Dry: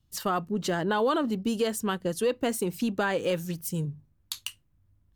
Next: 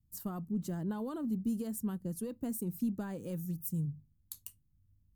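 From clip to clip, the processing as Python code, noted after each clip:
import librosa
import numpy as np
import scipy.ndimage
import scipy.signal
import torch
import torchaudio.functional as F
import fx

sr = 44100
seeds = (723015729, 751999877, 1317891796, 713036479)

y = fx.curve_eq(x, sr, hz=(220.0, 460.0, 990.0, 1500.0, 3100.0, 14000.0), db=(0, -14, -15, -19, -23, 2))
y = y * 10.0 ** (-3.5 / 20.0)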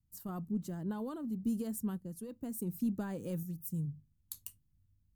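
y = fx.tremolo_random(x, sr, seeds[0], hz=3.5, depth_pct=55)
y = y * 10.0 ** (1.0 / 20.0)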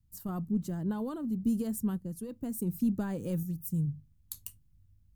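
y = fx.low_shelf(x, sr, hz=130.0, db=7.5)
y = y * 10.0 ** (3.0 / 20.0)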